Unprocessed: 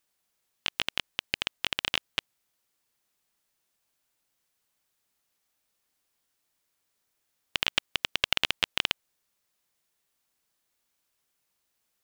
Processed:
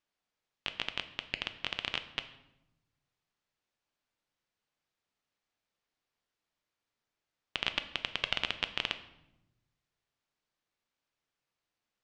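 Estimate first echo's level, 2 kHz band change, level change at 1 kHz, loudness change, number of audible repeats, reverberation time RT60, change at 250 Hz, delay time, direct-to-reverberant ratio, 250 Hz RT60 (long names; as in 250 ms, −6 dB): no echo audible, −5.5 dB, −4.5 dB, −6.0 dB, no echo audible, 0.90 s, −4.0 dB, no echo audible, 9.0 dB, 1.3 s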